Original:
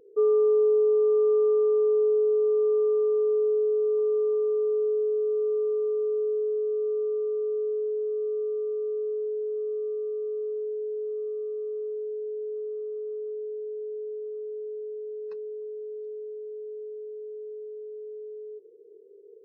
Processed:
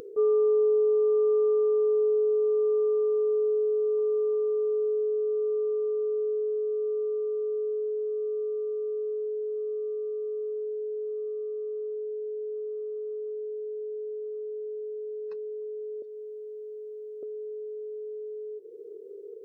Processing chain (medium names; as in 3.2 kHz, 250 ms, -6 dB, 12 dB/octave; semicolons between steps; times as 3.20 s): 16.02–17.23 s: high-pass 660 Hz 12 dB/octave; upward compressor, threshold -31 dBFS; trim -1.5 dB